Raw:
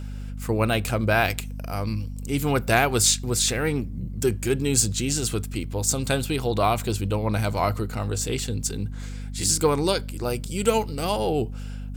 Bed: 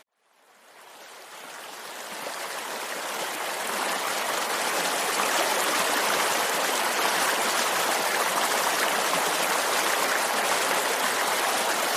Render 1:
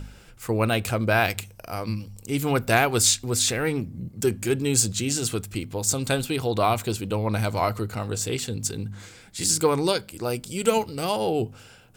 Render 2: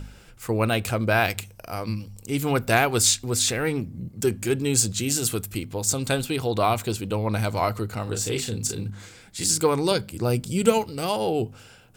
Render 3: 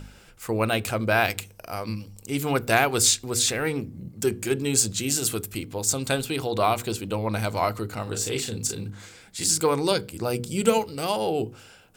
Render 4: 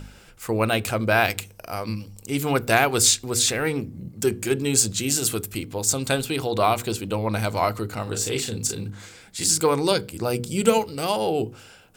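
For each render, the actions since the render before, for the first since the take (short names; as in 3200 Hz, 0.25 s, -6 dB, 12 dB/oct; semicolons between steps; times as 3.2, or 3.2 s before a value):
de-hum 50 Hz, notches 5
5–5.6 bell 13000 Hz +10.5 dB 0.63 oct; 8.03–8.9 doubler 36 ms -5.5 dB; 9.91–10.72 bell 120 Hz +9.5 dB 2.5 oct
low shelf 140 Hz -5 dB; notches 60/120/180/240/300/360/420/480 Hz
gain +2 dB; limiter -3 dBFS, peak gain reduction 1 dB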